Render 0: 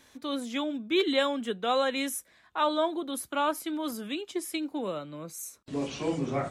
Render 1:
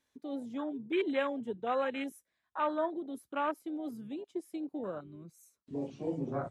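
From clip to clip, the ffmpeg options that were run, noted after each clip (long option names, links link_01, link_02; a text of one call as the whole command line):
ffmpeg -i in.wav -af "afwtdn=0.0282,volume=-5dB" out.wav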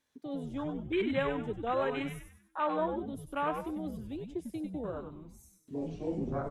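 ffmpeg -i in.wav -filter_complex "[0:a]asplit=6[link_01][link_02][link_03][link_04][link_05][link_06];[link_02]adelay=97,afreqshift=-120,volume=-6dB[link_07];[link_03]adelay=194,afreqshift=-240,volume=-14.2dB[link_08];[link_04]adelay=291,afreqshift=-360,volume=-22.4dB[link_09];[link_05]adelay=388,afreqshift=-480,volume=-30.5dB[link_10];[link_06]adelay=485,afreqshift=-600,volume=-38.7dB[link_11];[link_01][link_07][link_08][link_09][link_10][link_11]amix=inputs=6:normalize=0" out.wav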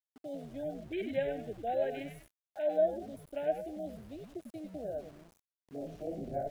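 ffmpeg -i in.wav -af "asuperstop=centerf=1100:order=12:qfactor=1.6,equalizer=frequency=640:width_type=o:width=0.44:gain=15,aeval=exprs='val(0)*gte(abs(val(0)),0.00422)':channel_layout=same,volume=-7.5dB" out.wav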